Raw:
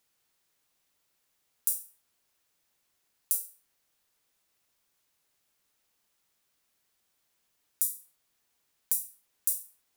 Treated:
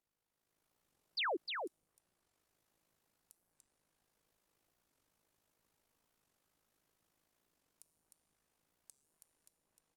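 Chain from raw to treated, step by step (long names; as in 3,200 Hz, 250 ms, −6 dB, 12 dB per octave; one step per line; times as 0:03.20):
treble cut that deepens with the level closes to 730 Hz, closed at −31 dBFS
high-shelf EQ 5,600 Hz +4 dB
harmonic and percussive parts rebalanced harmonic −4 dB
tilt shelving filter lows +7 dB, about 1,500 Hz
automatic gain control gain up to 9.5 dB
brickwall limiter −14.5 dBFS, peak gain reduction 10.5 dB
soft clipping −28 dBFS, distortion −3 dB
amplitude modulation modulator 53 Hz, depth 55%
tuned comb filter 160 Hz, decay 2 s, mix 70%
sound drawn into the spectrogram fall, 0:01.17–0:01.37, 290–5,200 Hz −37 dBFS
single-tap delay 306 ms −5 dB
wow of a warped record 45 rpm, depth 250 cents
level +1.5 dB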